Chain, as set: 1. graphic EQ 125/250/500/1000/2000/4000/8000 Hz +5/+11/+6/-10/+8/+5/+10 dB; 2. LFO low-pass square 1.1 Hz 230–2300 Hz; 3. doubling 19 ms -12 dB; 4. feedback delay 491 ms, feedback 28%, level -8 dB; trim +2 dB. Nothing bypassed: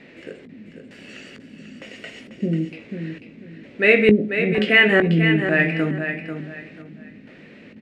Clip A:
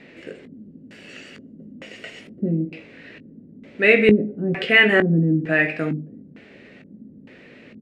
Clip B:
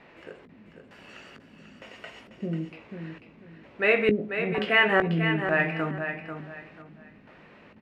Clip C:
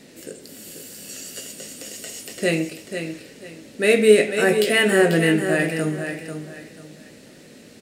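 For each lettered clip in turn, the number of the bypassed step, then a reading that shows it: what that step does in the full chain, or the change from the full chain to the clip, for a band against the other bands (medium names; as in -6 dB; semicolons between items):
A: 4, momentary loudness spread change -4 LU; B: 1, loudness change -7.0 LU; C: 2, 500 Hz band +4.5 dB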